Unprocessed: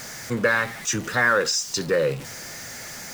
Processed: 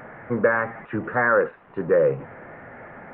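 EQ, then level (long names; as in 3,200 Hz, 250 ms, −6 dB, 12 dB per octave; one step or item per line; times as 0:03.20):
Gaussian smoothing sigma 5.9 samples
low-shelf EQ 220 Hz −10 dB
+6.0 dB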